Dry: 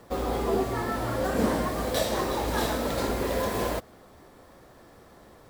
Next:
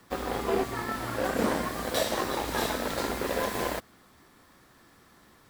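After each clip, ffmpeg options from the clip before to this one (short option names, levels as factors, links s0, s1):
-filter_complex "[0:a]lowshelf=f=160:g=-10,acrossover=split=360|890|3400[s0][s1][s2][s3];[s1]acrusher=bits=4:mix=0:aa=0.5[s4];[s0][s4][s2][s3]amix=inputs=4:normalize=0"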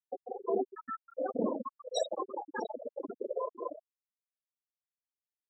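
-af "bass=f=250:g=-3,treble=f=4000:g=9,afftfilt=real='re*gte(hypot(re,im),0.141)':imag='im*gte(hypot(re,im),0.141)':win_size=1024:overlap=0.75,volume=0.794"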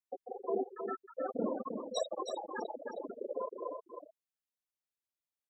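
-af "aecho=1:1:314:0.473,volume=0.708"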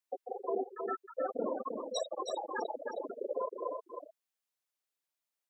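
-af "highpass=350,alimiter=level_in=1.58:limit=0.0631:level=0:latency=1:release=454,volume=0.631,volume=1.58"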